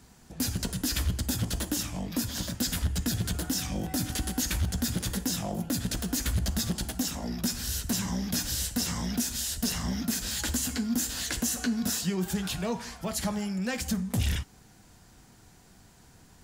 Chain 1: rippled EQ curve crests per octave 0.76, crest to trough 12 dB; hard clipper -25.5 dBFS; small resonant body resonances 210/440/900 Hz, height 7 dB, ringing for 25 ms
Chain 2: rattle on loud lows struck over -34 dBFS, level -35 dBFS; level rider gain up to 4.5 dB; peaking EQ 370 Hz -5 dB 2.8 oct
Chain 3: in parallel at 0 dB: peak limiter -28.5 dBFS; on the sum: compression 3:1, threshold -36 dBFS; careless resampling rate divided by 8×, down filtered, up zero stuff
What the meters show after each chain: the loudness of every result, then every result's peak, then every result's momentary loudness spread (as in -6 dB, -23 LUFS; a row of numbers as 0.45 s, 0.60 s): -27.5 LUFS, -27.0 LUFS, -25.5 LUFS; -17.0 dBFS, -14.5 dBFS, -6.5 dBFS; 3 LU, 4 LU, 11 LU